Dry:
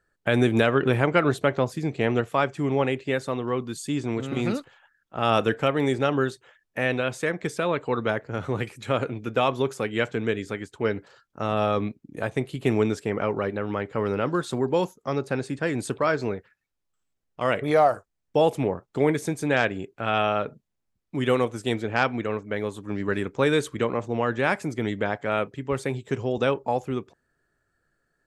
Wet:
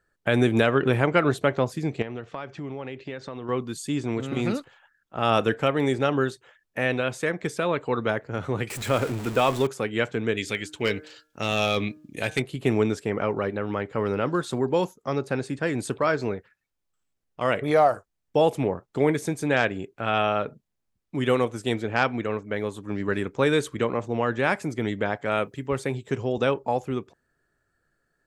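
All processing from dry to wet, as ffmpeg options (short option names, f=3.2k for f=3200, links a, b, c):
-filter_complex "[0:a]asettb=1/sr,asplit=3[a][b][c];[a]atrim=end=2.024[d];[b]atrim=start=2.02:end=3.49,asetpts=PTS-STARTPTS,afade=t=in:d=0.004:c=qsin,afade=t=out:st=1.466:d=0.004:c=qsin,acompressor=threshold=-32dB:ratio=4:attack=3.2:release=140:knee=1:detection=peak,lowpass=f=5.7k:w=0.5412,lowpass=f=5.7k:w=1.3066[e];[c]atrim=start=3.486[f];[d][e]acrossfade=d=0.004:c1=hsin:c2=qsin[g];[g][f]acrossfade=d=0.004:c1=qsin:c2=hsin,asettb=1/sr,asplit=3[h][i][j];[h]atrim=end=8.704[k];[i]atrim=start=8.7:end=9.67,asetpts=PTS-STARTPTS,afade=t=in:d=0.004:c=qsin,afade=t=out:st=0.966:d=0.004:c=qsin,aeval=exprs='val(0)+0.5*0.0299*sgn(val(0))':c=same,equalizer=f=7.7k:t=o:w=0.2:g=5.5[l];[j]atrim=start=9.666[m];[k][l]acrossfade=d=0.004:c1=hsin:c2=qsin[n];[n][m]acrossfade=d=0.004:c1=qsin:c2=hsin,asettb=1/sr,asplit=3[o][p][q];[o]atrim=end=10.374[r];[p]atrim=start=10.37:end=12.42,asetpts=PTS-STARTPTS,afade=t=in:d=0.004:c=qsin,afade=t=out:st=2.046:d=0.004:c=qsin,highshelf=f=1.8k:t=q:w=1.5:g=10,bandreject=f=153.4:t=h:w=4,bandreject=f=306.8:t=h:w=4,bandreject=f=460.2:t=h:w=4,bandreject=f=613.6:t=h:w=4,bandreject=f=767:t=h:w=4,bandreject=f=920.4:t=h:w=4,bandreject=f=1.0738k:t=h:w=4,bandreject=f=1.2272k:t=h:w=4,bandreject=f=1.3806k:t=h:w=4,bandreject=f=1.534k:t=h:w=4,bandreject=f=1.6874k:t=h:w=4,volume=14dB,asoftclip=hard,volume=-14dB[s];[q]atrim=start=12.416[t];[r][s]acrossfade=d=0.004:c1=hsin:c2=qsin[u];[u][t]acrossfade=d=0.004:c1=qsin:c2=hsin,asettb=1/sr,asplit=3[v][w][x];[v]atrim=end=25.254[y];[w]atrim=start=25.25:end=25.67,asetpts=PTS-STARTPTS,afade=t=in:d=0.004:c=qsin,afade=t=out:st=0.416:d=0.004:c=qsin,highshelf=f=7.1k:g=10.5,deesser=0.35[z];[x]atrim=start=25.666[aa];[y][z]acrossfade=d=0.004:c1=hsin:c2=qsin[ab];[ab][aa]acrossfade=d=0.004:c1=qsin:c2=hsin"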